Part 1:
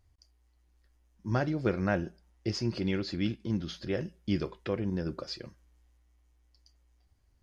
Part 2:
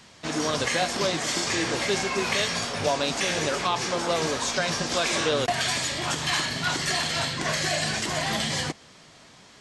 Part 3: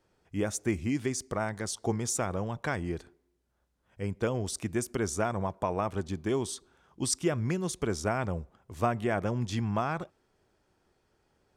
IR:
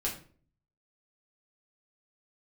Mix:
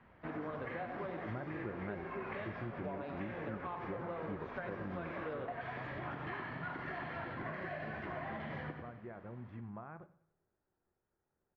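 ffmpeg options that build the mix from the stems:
-filter_complex "[0:a]volume=-5dB[link_01];[1:a]flanger=delay=7.9:depth=5.6:regen=-79:speed=1.2:shape=sinusoidal,volume=-4.5dB,asplit=2[link_02][link_03];[link_03]volume=-7.5dB[link_04];[2:a]alimiter=limit=-24dB:level=0:latency=1:release=347,volume=-16dB,asplit=3[link_05][link_06][link_07];[link_06]volume=-14.5dB[link_08];[link_07]volume=-18dB[link_09];[3:a]atrim=start_sample=2205[link_10];[link_08][link_10]afir=irnorm=-1:irlink=0[link_11];[link_04][link_09]amix=inputs=2:normalize=0,aecho=0:1:93|186|279|372|465|558:1|0.44|0.194|0.0852|0.0375|0.0165[link_12];[link_01][link_02][link_05][link_11][link_12]amix=inputs=5:normalize=0,lowpass=frequency=1900:width=0.5412,lowpass=frequency=1900:width=1.3066,acompressor=threshold=-39dB:ratio=5"

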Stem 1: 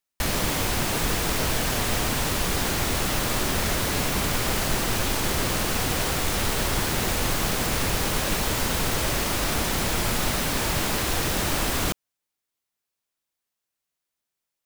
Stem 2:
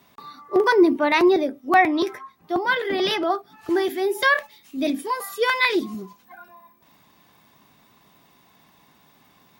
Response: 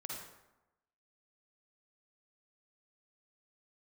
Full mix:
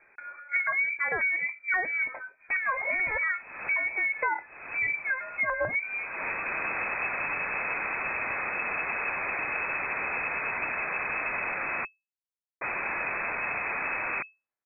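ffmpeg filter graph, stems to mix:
-filter_complex "[0:a]lowpass=frequency=1400:poles=1,tiltshelf=frequency=970:gain=-6.5,adelay=2300,volume=-0.5dB,asplit=3[link_01][link_02][link_03];[link_01]atrim=end=11.85,asetpts=PTS-STARTPTS,afade=type=out:start_time=11.846:duration=0.004:curve=hsin[link_04];[link_02]atrim=start=11.85:end=12.61,asetpts=PTS-STARTPTS,volume=0[link_05];[link_03]atrim=start=12.61,asetpts=PTS-STARTPTS,afade=type=in:duration=0.004:curve=hsin[link_06];[link_04][link_05][link_06]concat=n=3:v=0:a=1[link_07];[1:a]highshelf=frequency=4100:gain=9.5,volume=-1.5dB,asplit=2[link_08][link_09];[link_09]apad=whole_len=747760[link_10];[link_07][link_10]sidechaincompress=threshold=-40dB:ratio=10:attack=9:release=302[link_11];[link_11][link_08]amix=inputs=2:normalize=0,lowpass=frequency=2200:width_type=q:width=0.5098,lowpass=frequency=2200:width_type=q:width=0.6013,lowpass=frequency=2200:width_type=q:width=0.9,lowpass=frequency=2200:width_type=q:width=2.563,afreqshift=-2600,acompressor=threshold=-25dB:ratio=8"

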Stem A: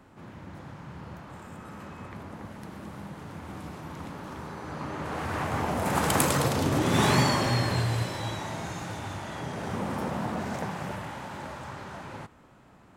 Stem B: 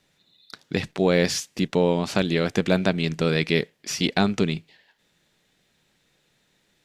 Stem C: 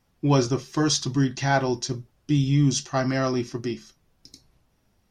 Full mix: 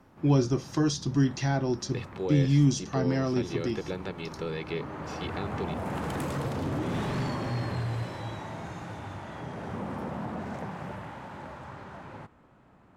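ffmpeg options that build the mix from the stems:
ffmpeg -i stem1.wav -i stem2.wav -i stem3.wav -filter_complex "[0:a]highshelf=frequency=3900:gain=-12,aeval=exprs='0.299*sin(PI/2*2.51*val(0)/0.299)':channel_layout=same,volume=-14.5dB[link_01];[1:a]acrossover=split=4000[link_02][link_03];[link_03]acompressor=threshold=-43dB:ratio=4:attack=1:release=60[link_04];[link_02][link_04]amix=inputs=2:normalize=0,aecho=1:1:2.3:0.65,adelay=1200,volume=-12.5dB[link_05];[2:a]volume=-1.5dB[link_06];[link_01][link_05][link_06]amix=inputs=3:normalize=0,acrossover=split=440[link_07][link_08];[link_08]acompressor=threshold=-36dB:ratio=2.5[link_09];[link_07][link_09]amix=inputs=2:normalize=0" out.wav

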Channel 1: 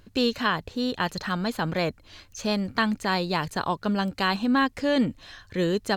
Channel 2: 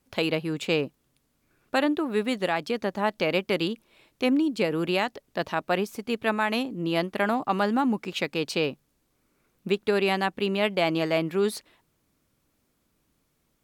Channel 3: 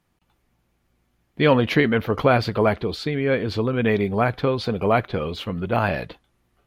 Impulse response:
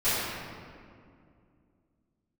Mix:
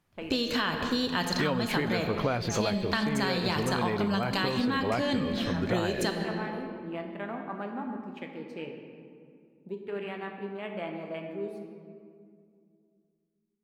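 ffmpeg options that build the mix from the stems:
-filter_complex "[0:a]agate=range=-33dB:threshold=-50dB:ratio=3:detection=peak,alimiter=limit=-16dB:level=0:latency=1,adynamicequalizer=threshold=0.0112:dfrequency=1800:dqfactor=0.7:tfrequency=1800:tqfactor=0.7:attack=5:release=100:ratio=0.375:range=2.5:mode=boostabove:tftype=highshelf,adelay=150,volume=1.5dB,asplit=2[link_01][link_02];[link_02]volume=-18dB[link_03];[1:a]afwtdn=0.0282,volume=-14.5dB,asplit=2[link_04][link_05];[link_05]volume=-15.5dB[link_06];[2:a]volume=-3.5dB[link_07];[3:a]atrim=start_sample=2205[link_08];[link_03][link_06]amix=inputs=2:normalize=0[link_09];[link_09][link_08]afir=irnorm=-1:irlink=0[link_10];[link_01][link_04][link_07][link_10]amix=inputs=4:normalize=0,acompressor=threshold=-24dB:ratio=12"

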